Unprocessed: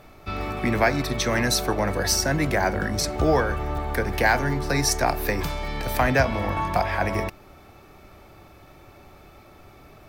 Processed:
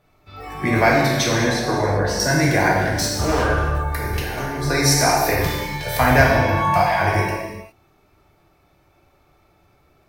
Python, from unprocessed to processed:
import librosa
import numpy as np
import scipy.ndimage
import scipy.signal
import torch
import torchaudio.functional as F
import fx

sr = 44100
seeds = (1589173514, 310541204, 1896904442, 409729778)

y = fx.noise_reduce_blind(x, sr, reduce_db=16)
y = fx.lowpass(y, sr, hz=1400.0, slope=6, at=(1.27, 2.2))
y = fx.overload_stage(y, sr, gain_db=22.5, at=(2.77, 3.43))
y = fx.over_compress(y, sr, threshold_db=-30.0, ratio=-1.0, at=(3.93, 4.69), fade=0.02)
y = fx.rev_gated(y, sr, seeds[0], gate_ms=440, shape='falling', drr_db=-4.5)
y = y * 10.0 ** (1.0 / 20.0)